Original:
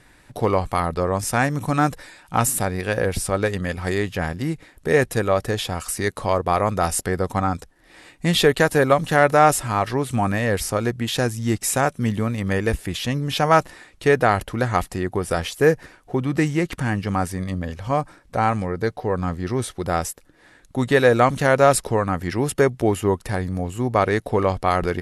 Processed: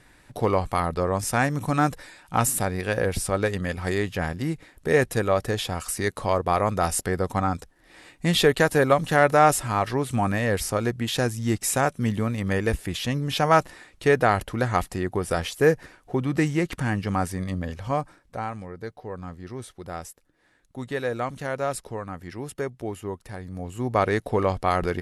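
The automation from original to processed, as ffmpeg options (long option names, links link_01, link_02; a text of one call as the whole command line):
ffmpeg -i in.wav -af "volume=7dB,afade=type=out:start_time=17.78:duration=0.71:silence=0.316228,afade=type=in:start_time=23.43:duration=0.56:silence=0.334965" out.wav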